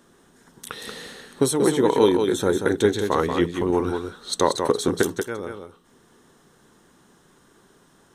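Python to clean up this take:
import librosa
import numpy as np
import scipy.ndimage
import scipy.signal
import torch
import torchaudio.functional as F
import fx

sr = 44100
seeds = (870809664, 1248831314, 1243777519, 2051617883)

y = fx.fix_echo_inverse(x, sr, delay_ms=184, level_db=-6.0)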